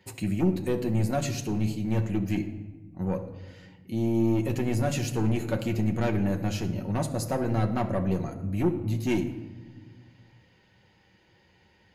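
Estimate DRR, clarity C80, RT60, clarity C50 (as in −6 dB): 2.5 dB, 13.0 dB, 1.2 s, 11.0 dB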